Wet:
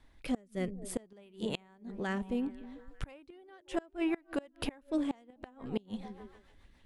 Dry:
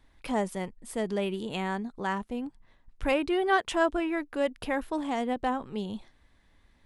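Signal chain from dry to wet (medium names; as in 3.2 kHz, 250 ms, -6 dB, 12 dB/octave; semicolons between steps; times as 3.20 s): rotary cabinet horn 0.6 Hz, later 7 Hz, at 4.76 s; repeats whose band climbs or falls 148 ms, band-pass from 170 Hz, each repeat 0.7 oct, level -12 dB; inverted gate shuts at -24 dBFS, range -29 dB; trim +2.5 dB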